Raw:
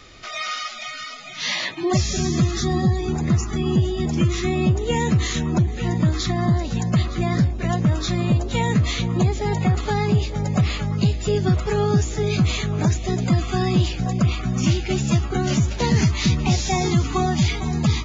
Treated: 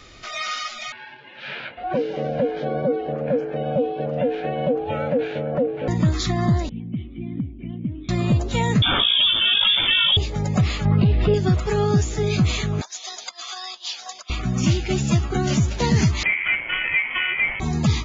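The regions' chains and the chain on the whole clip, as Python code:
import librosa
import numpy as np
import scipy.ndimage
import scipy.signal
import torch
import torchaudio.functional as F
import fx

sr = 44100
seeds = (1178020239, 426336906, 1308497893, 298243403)

y = fx.chain(x, sr, fx.ring_mod(carrier_hz=380.0),
    fx.cabinet(low_hz=130.0, low_slope=12, high_hz=2700.0, hz=(140.0, 200.0, 300.0, 440.0, 1100.0, 2100.0), db=(6, -7, -4, 5, -8, -3)), at=(0.92, 5.88))
y = fx.chain(y, sr, fx.formant_cascade(vowel='i'),
    fx.clip_hard(threshold_db=-16.0),
    fx.resample_bad(factor=6, down='none', up='filtered'), at=(6.69, 8.09))
y = fx.chain(y, sr, fx.highpass(hz=140.0, slope=6),
    fx.freq_invert(carrier_hz=3500),
    fx.env_flatten(amount_pct=70), at=(8.82, 10.17))
y = fx.chain(y, sr, fx.bessel_lowpass(hz=2300.0, order=6),
    fx.env_flatten(amount_pct=70), at=(10.85, 11.34))
y = fx.chain(y, sr, fx.band_shelf(hz=4600.0, db=11.0, octaves=1.2),
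    fx.over_compress(threshold_db=-21.0, ratio=-0.5),
    fx.ladder_highpass(hz=720.0, resonance_pct=30), at=(12.81, 14.3))
y = fx.chain(y, sr, fx.self_delay(depth_ms=0.19),
    fx.ring_mod(carrier_hz=990.0),
    fx.freq_invert(carrier_hz=3200), at=(16.23, 17.6))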